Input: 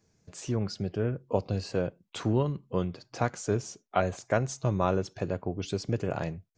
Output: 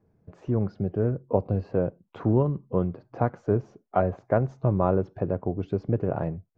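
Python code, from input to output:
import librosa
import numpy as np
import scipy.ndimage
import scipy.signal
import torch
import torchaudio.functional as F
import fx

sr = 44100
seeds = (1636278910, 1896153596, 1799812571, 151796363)

y = scipy.signal.sosfilt(scipy.signal.butter(2, 1000.0, 'lowpass', fs=sr, output='sos'), x)
y = y * 10.0 ** (4.5 / 20.0)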